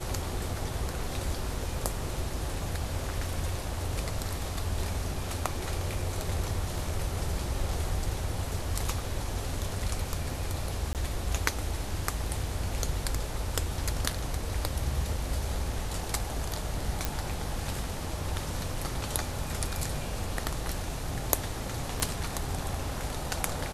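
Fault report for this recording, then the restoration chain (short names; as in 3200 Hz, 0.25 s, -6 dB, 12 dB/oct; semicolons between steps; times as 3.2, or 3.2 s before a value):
10.93–10.95 gap 18 ms
17.05 pop
22 pop -15 dBFS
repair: de-click; interpolate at 10.93, 18 ms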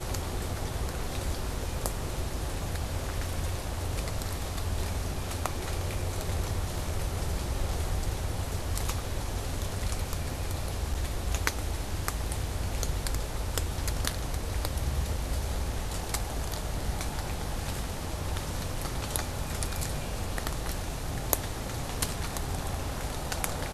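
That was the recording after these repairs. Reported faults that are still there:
22 pop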